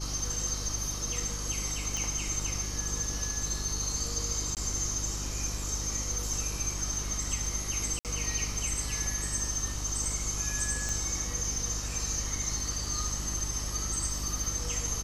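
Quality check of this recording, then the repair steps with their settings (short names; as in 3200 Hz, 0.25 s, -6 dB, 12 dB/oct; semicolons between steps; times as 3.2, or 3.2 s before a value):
hum 50 Hz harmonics 7 -37 dBFS
1.97 pop
4.55–4.57 gap 18 ms
7.99–8.05 gap 58 ms
10.89 pop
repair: de-click; de-hum 50 Hz, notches 7; interpolate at 4.55, 18 ms; interpolate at 7.99, 58 ms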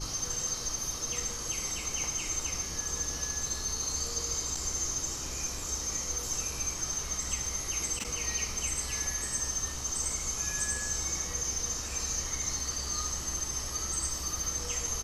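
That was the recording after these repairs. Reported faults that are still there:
none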